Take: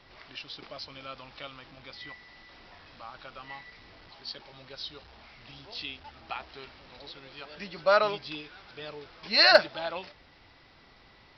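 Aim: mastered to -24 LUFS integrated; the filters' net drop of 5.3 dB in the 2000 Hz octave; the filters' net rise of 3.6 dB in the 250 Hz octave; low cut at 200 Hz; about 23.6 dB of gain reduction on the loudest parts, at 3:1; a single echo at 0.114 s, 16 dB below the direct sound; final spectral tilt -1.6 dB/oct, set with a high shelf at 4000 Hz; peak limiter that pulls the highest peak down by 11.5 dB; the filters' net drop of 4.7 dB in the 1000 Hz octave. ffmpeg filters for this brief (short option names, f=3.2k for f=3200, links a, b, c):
-af "highpass=200,equalizer=f=250:t=o:g=7,equalizer=f=1k:t=o:g=-6,equalizer=f=2k:t=o:g=-6,highshelf=f=4k:g=4.5,acompressor=threshold=-48dB:ratio=3,alimiter=level_in=17dB:limit=-24dB:level=0:latency=1,volume=-17dB,aecho=1:1:114:0.158,volume=27.5dB"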